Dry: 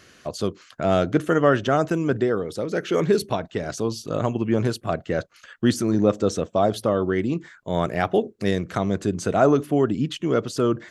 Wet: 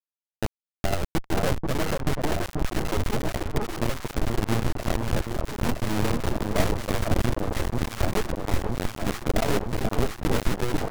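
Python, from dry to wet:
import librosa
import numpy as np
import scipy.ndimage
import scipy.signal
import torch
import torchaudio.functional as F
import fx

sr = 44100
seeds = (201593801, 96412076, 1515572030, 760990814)

y = fx.lower_of_two(x, sr, delay_ms=9.0)
y = scipy.signal.sosfilt(scipy.signal.butter(2, 1300.0, 'lowpass', fs=sr, output='sos'), y)
y = fx.schmitt(y, sr, flips_db=-22.5)
y = fx.echo_alternate(y, sr, ms=484, hz=1000.0, feedback_pct=82, wet_db=-3)
y = np.maximum(y, 0.0)
y = fx.vibrato_shape(y, sr, shape='saw_up', rate_hz=4.1, depth_cents=100.0)
y = y * librosa.db_to_amplitude(5.5)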